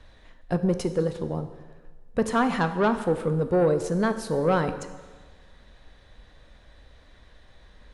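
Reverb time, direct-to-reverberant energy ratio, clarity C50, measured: 1.4 s, 9.0 dB, 11.5 dB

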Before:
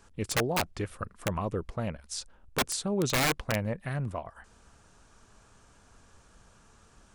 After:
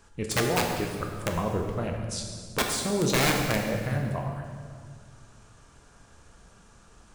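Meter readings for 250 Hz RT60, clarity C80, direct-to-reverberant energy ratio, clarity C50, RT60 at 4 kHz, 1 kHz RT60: 2.5 s, 5.0 dB, 1.5 dB, 3.5 dB, 1.6 s, 1.7 s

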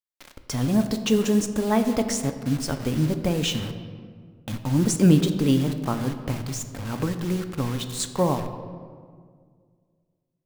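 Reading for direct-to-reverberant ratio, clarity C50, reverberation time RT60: 7.0 dB, 9.5 dB, 1.9 s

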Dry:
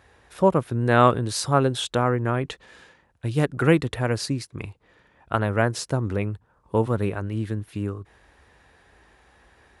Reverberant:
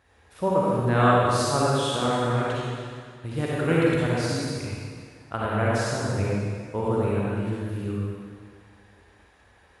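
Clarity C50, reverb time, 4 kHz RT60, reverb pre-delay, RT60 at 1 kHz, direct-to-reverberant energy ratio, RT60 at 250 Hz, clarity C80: -5.5 dB, 2.0 s, 1.9 s, 37 ms, 2.0 s, -6.5 dB, 2.0 s, -3.0 dB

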